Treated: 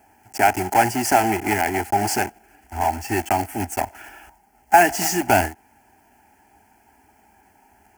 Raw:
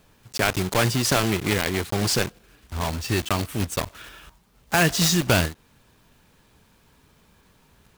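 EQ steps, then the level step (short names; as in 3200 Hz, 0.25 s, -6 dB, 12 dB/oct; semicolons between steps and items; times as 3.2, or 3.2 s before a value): HPF 76 Hz 12 dB/oct; bell 800 Hz +14.5 dB 0.43 oct; fixed phaser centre 760 Hz, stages 8; +3.0 dB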